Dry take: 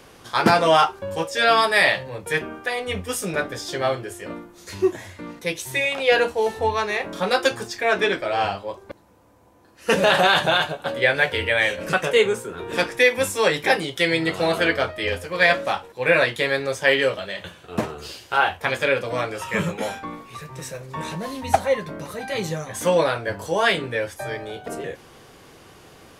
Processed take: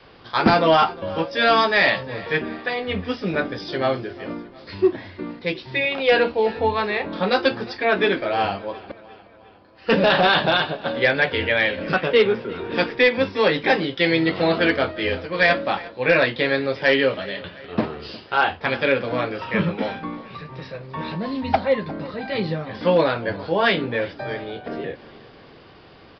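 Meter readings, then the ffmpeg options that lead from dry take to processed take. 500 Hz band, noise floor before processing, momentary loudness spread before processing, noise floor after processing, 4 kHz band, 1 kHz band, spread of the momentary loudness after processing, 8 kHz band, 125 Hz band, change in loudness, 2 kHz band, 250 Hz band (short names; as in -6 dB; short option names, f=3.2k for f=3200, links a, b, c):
+1.0 dB, -48 dBFS, 15 LU, -47 dBFS, 0.0 dB, 0.0 dB, 14 LU, under -20 dB, +2.0 dB, +0.5 dB, 0.0 dB, +4.5 dB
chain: -af "adynamicequalizer=threshold=0.01:dfrequency=250:dqfactor=1.6:tfrequency=250:tqfactor=1.6:attack=5:release=100:ratio=0.375:range=4:mode=boostabove:tftype=bell,aresample=11025,volume=9dB,asoftclip=hard,volume=-9dB,aresample=44100,aecho=1:1:356|712|1068|1424:0.1|0.054|0.0292|0.0157"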